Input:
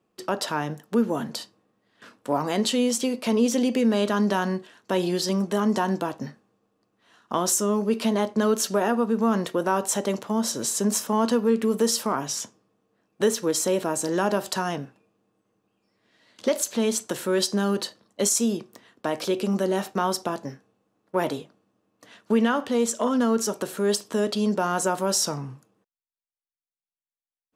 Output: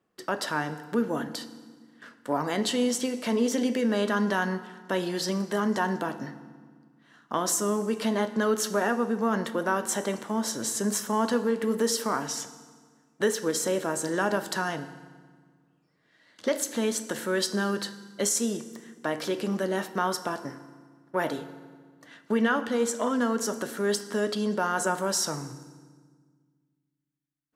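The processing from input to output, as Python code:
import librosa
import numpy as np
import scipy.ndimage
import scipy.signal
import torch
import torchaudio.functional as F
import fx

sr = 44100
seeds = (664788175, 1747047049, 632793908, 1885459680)

y = fx.peak_eq(x, sr, hz=1700.0, db=7.0, octaves=0.72)
y = fx.notch(y, sr, hz=2500.0, q=13.0)
y = fx.rev_fdn(y, sr, rt60_s=1.6, lf_ratio=1.45, hf_ratio=0.8, size_ms=20.0, drr_db=11.0)
y = y * 10.0 ** (-4.0 / 20.0)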